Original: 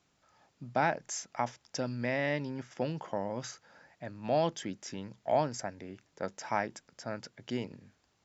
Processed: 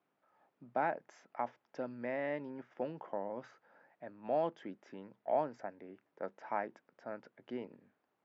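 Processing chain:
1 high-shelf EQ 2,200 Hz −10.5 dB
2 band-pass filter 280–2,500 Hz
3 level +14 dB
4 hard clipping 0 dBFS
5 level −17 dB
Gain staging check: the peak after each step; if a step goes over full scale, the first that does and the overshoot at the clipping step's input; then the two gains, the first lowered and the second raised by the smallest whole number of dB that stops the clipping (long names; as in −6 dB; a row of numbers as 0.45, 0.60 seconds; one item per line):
−16.5, −18.0, −4.0, −4.0, −21.0 dBFS
no step passes full scale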